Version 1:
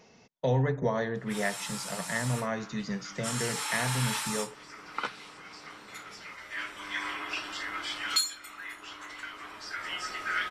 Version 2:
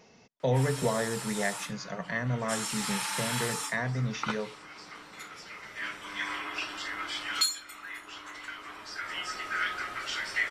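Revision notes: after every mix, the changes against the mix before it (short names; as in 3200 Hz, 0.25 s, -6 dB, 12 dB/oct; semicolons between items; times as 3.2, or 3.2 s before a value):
background: entry -0.75 s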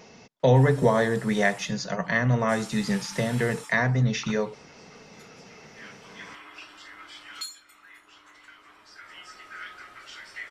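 speech +8.0 dB; background -9.5 dB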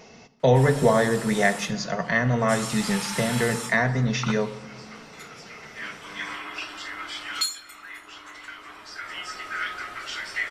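background +9.5 dB; reverb: on, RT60 1.6 s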